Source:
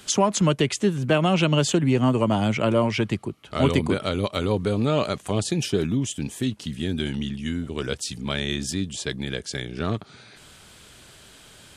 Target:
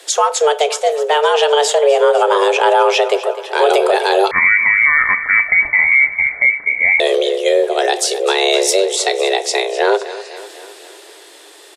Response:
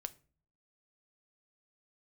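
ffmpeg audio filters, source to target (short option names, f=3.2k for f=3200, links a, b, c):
-filter_complex "[0:a]dynaudnorm=f=430:g=11:m=11.5dB,afreqshift=290,aecho=1:1:254|508|762|1016|1270|1524:0.158|0.0919|0.0533|0.0309|0.0179|0.0104[a];[1:a]atrim=start_sample=2205[b];[a][b]afir=irnorm=-1:irlink=0,asettb=1/sr,asplit=3[c][d][e];[c]atrim=end=4.314[f];[d]atrim=start=4.31:end=7,asetpts=PTS-STARTPTS,afade=t=in:d=0.004:c=qsin,afade=t=out:st=2.686:d=0.004:c=qsin,lowpass=f=2.3k:t=q:w=0.5098,lowpass=f=2.3k:t=q:w=0.6013,lowpass=f=2.3k:t=q:w=0.9,lowpass=f=2.3k:t=q:w=2.563,afreqshift=-2700[g];[e]atrim=start=6.996[h];[f][g]acrossfade=d=0.004:c1=hsin:c2=qsin[i];[i][h]acrossfade=d=0.004:c1=qsin:c2=hsin,alimiter=level_in=12dB:limit=-1dB:release=50:level=0:latency=1,volume=-2.5dB"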